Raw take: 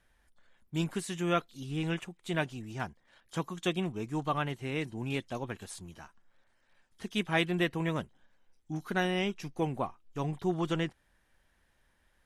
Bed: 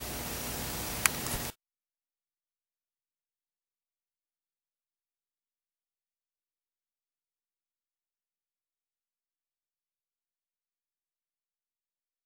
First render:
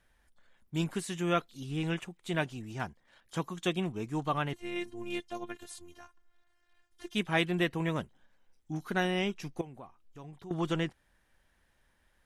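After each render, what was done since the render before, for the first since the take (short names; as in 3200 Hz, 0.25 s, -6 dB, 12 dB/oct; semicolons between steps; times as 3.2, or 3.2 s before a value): 4.53–7.15 robotiser 350 Hz; 9.61–10.51 compressor 2:1, threshold -56 dBFS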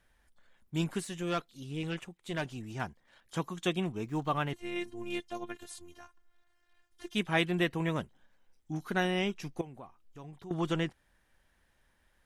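1.04–2.45 tube stage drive 25 dB, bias 0.6; 4.04–4.49 median filter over 5 samples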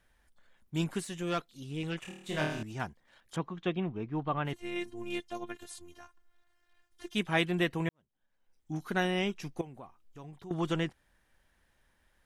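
2.02–2.63 flutter echo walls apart 4.5 m, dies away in 0.7 s; 3.36–4.45 air absorption 320 m; 7.89–8.72 fade in quadratic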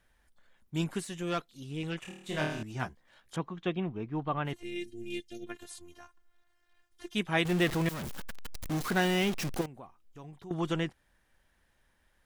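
2.72–3.36 doubler 16 ms -6 dB; 4.63–5.47 Butterworth band-stop 1000 Hz, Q 0.54; 7.45–9.66 zero-crossing step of -31 dBFS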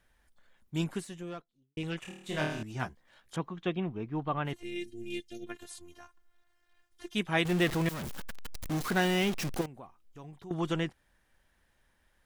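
0.76–1.77 studio fade out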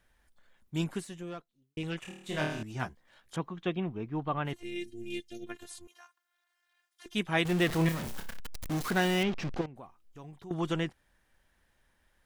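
5.87–7.06 HPF 900 Hz; 7.67–8.4 flutter echo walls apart 5.3 m, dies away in 0.26 s; 9.23–9.76 air absorption 160 m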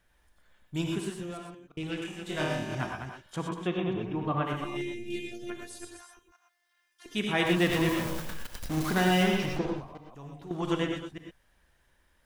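reverse delay 0.172 s, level -7 dB; non-linear reverb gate 0.14 s rising, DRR 2 dB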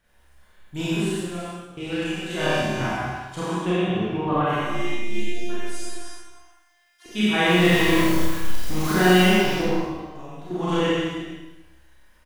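early reflections 28 ms -6.5 dB, 47 ms -6 dB; Schroeder reverb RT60 0.91 s, combs from 30 ms, DRR -6 dB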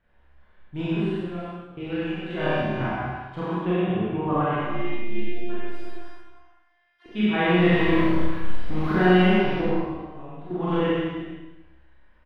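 air absorption 410 m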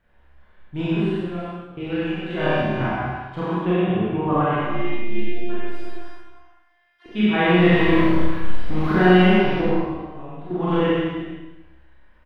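gain +3.5 dB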